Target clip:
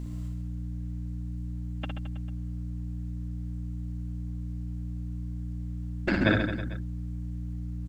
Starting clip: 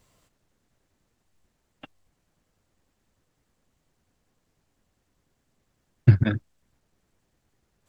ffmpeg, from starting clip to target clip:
-filter_complex "[0:a]aeval=exprs='val(0)+0.01*(sin(2*PI*60*n/s)+sin(2*PI*2*60*n/s)/2+sin(2*PI*3*60*n/s)/3+sin(2*PI*4*60*n/s)/4+sin(2*PI*5*60*n/s)/5)':c=same,afftfilt=real='re*lt(hypot(re,im),0.447)':imag='im*lt(hypot(re,im),0.447)':win_size=1024:overlap=0.75,asplit=2[a][b];[b]aecho=0:1:60|132|218.4|322.1|446.5:0.631|0.398|0.251|0.158|0.1[c];[a][c]amix=inputs=2:normalize=0,volume=6dB"

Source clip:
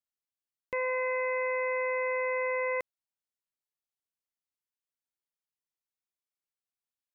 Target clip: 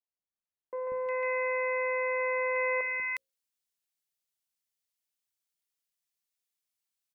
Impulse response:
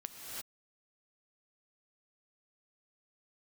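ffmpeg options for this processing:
-filter_complex "[0:a]bandreject=f=60:t=h:w=6,bandreject=f=120:t=h:w=6,bandreject=f=180:t=h:w=6,bandreject=f=240:t=h:w=6,bandreject=f=300:t=h:w=6,bandreject=f=360:t=h:w=6,bandreject=f=420:t=h:w=6,bandreject=f=480:t=h:w=6,bandreject=f=540:t=h:w=6,asetnsamples=n=441:p=0,asendcmd='0.87 highshelf g 2.5;2.2 highshelf g 8',highshelf=f=2.1k:g=-9,acrossover=split=340|1200[a][b][c];[a]adelay=190[d];[c]adelay=360[e];[d][b][e]amix=inputs=3:normalize=0"

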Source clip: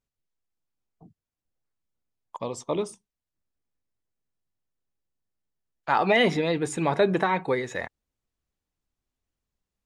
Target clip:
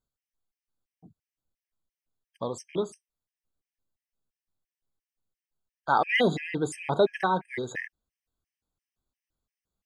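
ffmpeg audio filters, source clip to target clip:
-filter_complex "[0:a]asettb=1/sr,asplit=3[a][b][c];[a]atrim=end=6.644[d];[b]atrim=start=6.64:end=7.07,asetpts=PTS-STARTPTS,afade=t=in:d=0.004:c=qsin,afade=t=out:st=0.426:d=0.004:c=qsin,bandreject=f=1.6k:w=6.1[e];[c]atrim=start=7.066[f];[d][e]acrossfade=d=0.004:c1=hsin:c2=qsin[g];[g][f]acrossfade=d=0.004:c1=qsin:c2=hsin,afftfilt=real='re*gt(sin(2*PI*2.9*pts/sr)*(1-2*mod(floor(b*sr/1024/1600),2)),0)':imag='im*gt(sin(2*PI*2.9*pts/sr)*(1-2*mod(floor(b*sr/1024/1600),2)),0)':win_size=1024:overlap=0.75"

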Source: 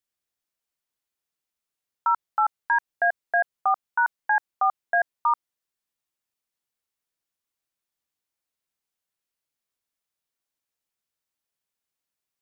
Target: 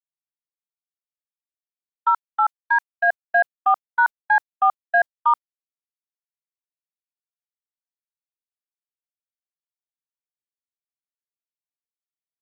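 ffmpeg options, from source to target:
-filter_complex "[0:a]agate=range=-57dB:threshold=-24dB:ratio=16:detection=peak,asplit=3[a][b][c];[a]afade=t=out:st=2.09:d=0.02[d];[b]lowshelf=f=460:g=-10.5,afade=t=in:st=2.09:d=0.02,afade=t=out:st=3.07:d=0.02[e];[c]afade=t=in:st=3.07:d=0.02[f];[d][e][f]amix=inputs=3:normalize=0,acontrast=28"

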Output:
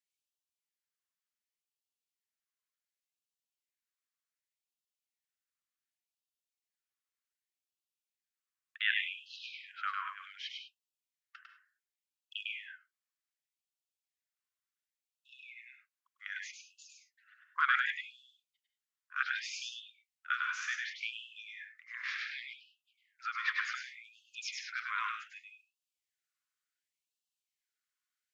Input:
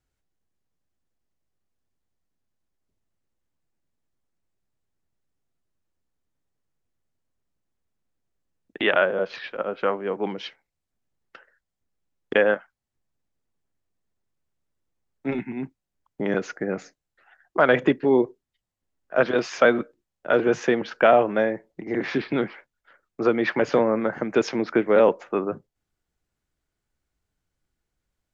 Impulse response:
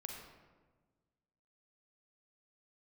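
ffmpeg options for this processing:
-filter_complex "[0:a]lowshelf=f=490:g=-11,asplit=2[a][b];[1:a]atrim=start_sample=2205,afade=t=out:st=0.16:d=0.01,atrim=end_sample=7497,adelay=101[c];[b][c]afir=irnorm=-1:irlink=0,volume=2dB[d];[a][d]amix=inputs=2:normalize=0,afftfilt=real='re*gte(b*sr/1024,980*pow(2600/980,0.5+0.5*sin(2*PI*0.67*pts/sr)))':imag='im*gte(b*sr/1024,980*pow(2600/980,0.5+0.5*sin(2*PI*0.67*pts/sr)))':win_size=1024:overlap=0.75,volume=-6dB"

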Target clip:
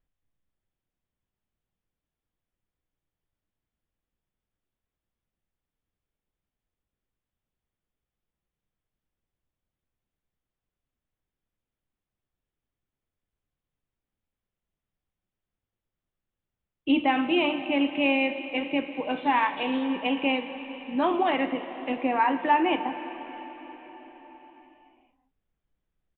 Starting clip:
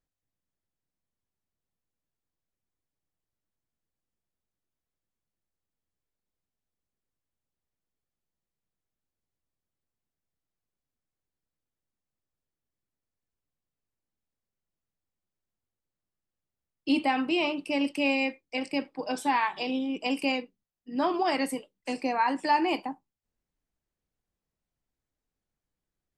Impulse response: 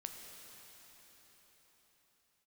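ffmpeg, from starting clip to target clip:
-filter_complex "[0:a]lowshelf=f=65:g=9,asplit=2[a][b];[1:a]atrim=start_sample=2205[c];[b][c]afir=irnorm=-1:irlink=0,volume=4dB[d];[a][d]amix=inputs=2:normalize=0,aresample=8000,aresample=44100,volume=-3.5dB"

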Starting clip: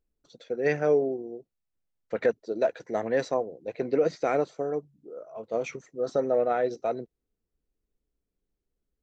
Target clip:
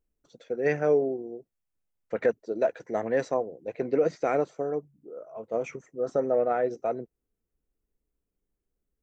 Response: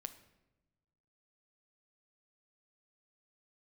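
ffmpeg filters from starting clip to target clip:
-af "asetnsamples=n=441:p=0,asendcmd='4.69 equalizer g -14.5',equalizer=f=4.1k:w=1.8:g=-7.5"

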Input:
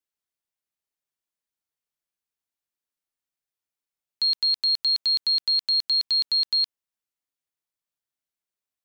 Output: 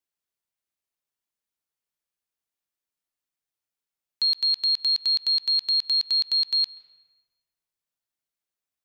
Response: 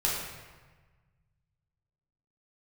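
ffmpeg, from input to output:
-filter_complex "[0:a]asplit=2[a][b];[b]equalizer=f=66:w=0.37:g=-7[c];[1:a]atrim=start_sample=2205,lowpass=3.2k,adelay=128[d];[c][d]afir=irnorm=-1:irlink=0,volume=-24.5dB[e];[a][e]amix=inputs=2:normalize=0"

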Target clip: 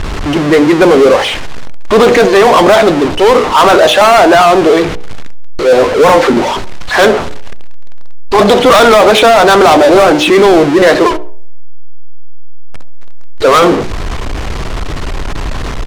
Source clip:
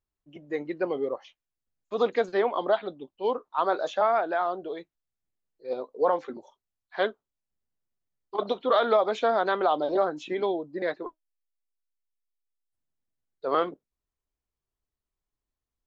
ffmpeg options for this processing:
-filter_complex "[0:a]aeval=exprs='val(0)+0.5*0.0224*sgn(val(0))':c=same,asplit=2[a][b];[b]aecho=0:1:68|136|204:0.0841|0.0303|0.0109[c];[a][c]amix=inputs=2:normalize=0,adynamicsmooth=sensitivity=7:basefreq=3k,bandreject=f=60.92:t=h:w=4,bandreject=f=121.84:t=h:w=4,bandreject=f=182.76:t=h:w=4,bandreject=f=243.68:t=h:w=4,bandreject=f=304.6:t=h:w=4,bandreject=f=365.52:t=h:w=4,bandreject=f=426.44:t=h:w=4,bandreject=f=487.36:t=h:w=4,bandreject=f=548.28:t=h:w=4,bandreject=f=609.2:t=h:w=4,bandreject=f=670.12:t=h:w=4,bandreject=f=731.04:t=h:w=4,bandreject=f=791.96:t=h:w=4,bandreject=f=852.88:t=h:w=4,bandreject=f=913.8:t=h:w=4,apsyclip=27.5dB,volume=-1.5dB"

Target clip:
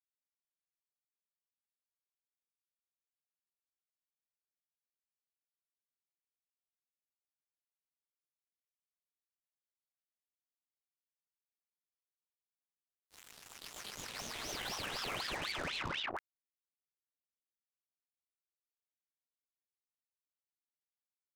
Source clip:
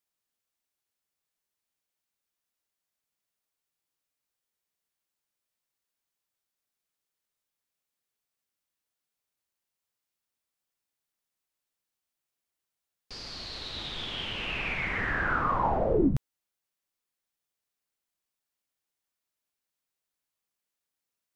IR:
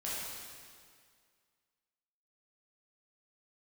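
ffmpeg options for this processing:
-af "highpass=62,acompressor=threshold=-27dB:ratio=20,flanger=delay=19:depth=3.4:speed=1.5,acrusher=bits=5:mix=0:aa=0.5,aeval=exprs='val(0)*sin(2*PI*1900*n/s+1900*0.8/4*sin(2*PI*4*n/s))':c=same,volume=-3dB"

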